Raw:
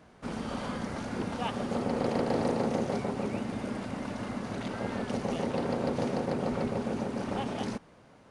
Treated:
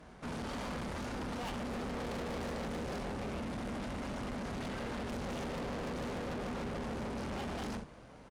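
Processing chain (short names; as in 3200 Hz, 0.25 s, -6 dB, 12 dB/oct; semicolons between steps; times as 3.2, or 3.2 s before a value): octaver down 2 oct, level -3 dB; early reflections 25 ms -8 dB, 65 ms -12 dB; tube stage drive 41 dB, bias 0.55; gain +3.5 dB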